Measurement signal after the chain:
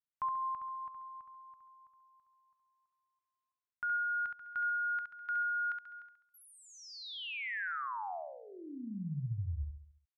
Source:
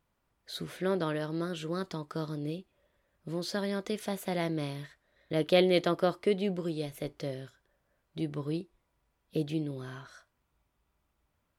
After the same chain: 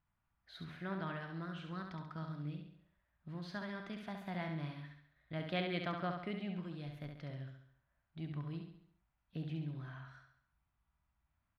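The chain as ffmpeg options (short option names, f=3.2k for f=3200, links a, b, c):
-filter_complex "[0:a]firequalizer=gain_entry='entry(130,0);entry(470,-18);entry(690,-4);entry(1600,-1);entry(7500,-23)':delay=0.05:min_phase=1,asplit=2[a][b];[b]aecho=0:1:68|136|204|272|340|408:0.531|0.255|0.122|0.0587|0.0282|0.0135[c];[a][c]amix=inputs=2:normalize=0,volume=-5dB"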